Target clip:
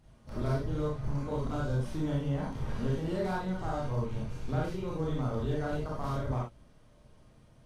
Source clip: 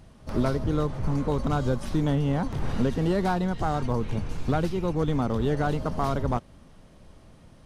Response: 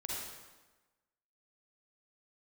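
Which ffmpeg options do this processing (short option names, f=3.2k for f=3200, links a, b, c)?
-filter_complex "[1:a]atrim=start_sample=2205,afade=t=out:st=0.22:d=0.01,atrim=end_sample=10143,asetrate=70560,aresample=44100[a];[0:a][a]afir=irnorm=-1:irlink=0,volume=-4dB"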